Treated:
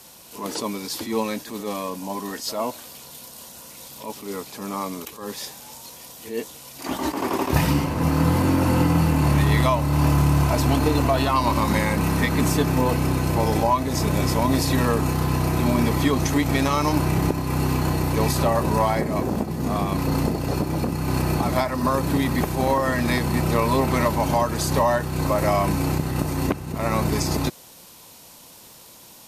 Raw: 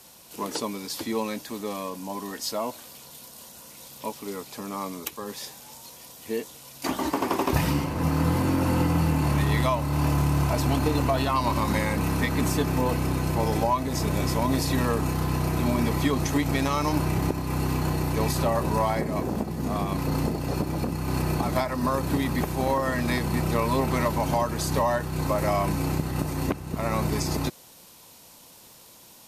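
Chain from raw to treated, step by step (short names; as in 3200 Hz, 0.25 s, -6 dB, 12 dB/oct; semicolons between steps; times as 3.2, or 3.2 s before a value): reverse echo 55 ms -16 dB; attack slew limiter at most 120 dB/s; gain +4 dB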